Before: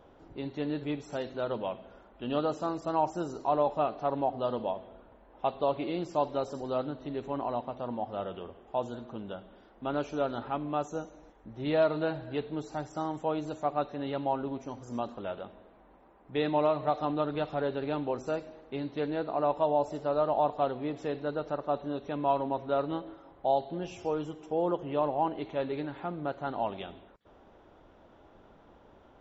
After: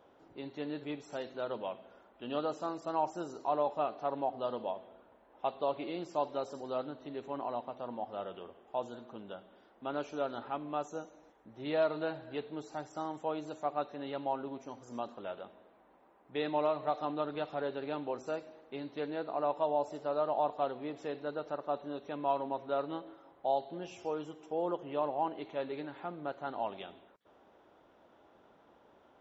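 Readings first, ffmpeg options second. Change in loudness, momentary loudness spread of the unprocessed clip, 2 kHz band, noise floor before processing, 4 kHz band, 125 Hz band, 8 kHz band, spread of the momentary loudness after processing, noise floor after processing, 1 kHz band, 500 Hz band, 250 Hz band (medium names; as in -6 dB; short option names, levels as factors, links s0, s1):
-4.5 dB, 11 LU, -3.5 dB, -58 dBFS, -3.5 dB, -10.5 dB, no reading, 12 LU, -64 dBFS, -4.0 dB, -4.5 dB, -6.5 dB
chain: -af "highpass=f=290:p=1,volume=0.668"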